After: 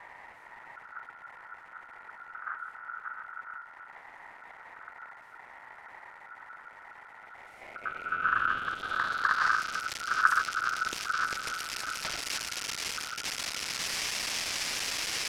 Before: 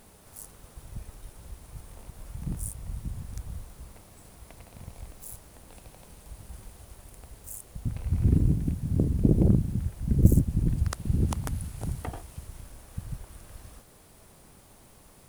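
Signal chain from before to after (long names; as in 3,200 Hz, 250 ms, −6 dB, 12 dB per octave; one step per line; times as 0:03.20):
spike at every zero crossing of −10 dBFS
low-pass filter sweep 490 Hz → 3,800 Hz, 0:07.15–0:09.57
ring modulation 1,400 Hz
level −3.5 dB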